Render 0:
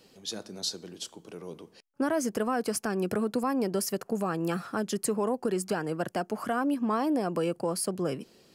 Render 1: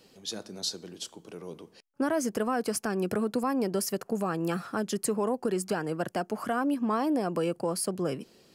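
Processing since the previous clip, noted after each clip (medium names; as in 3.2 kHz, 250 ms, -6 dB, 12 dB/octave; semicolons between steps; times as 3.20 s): no audible change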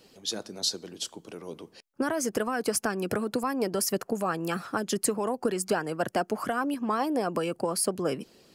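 harmonic-percussive split percussive +7 dB; trim -2.5 dB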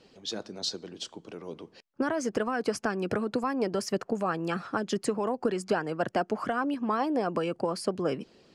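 distance through air 98 m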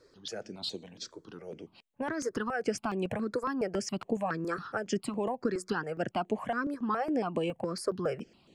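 stepped phaser 7.2 Hz 780–5100 Hz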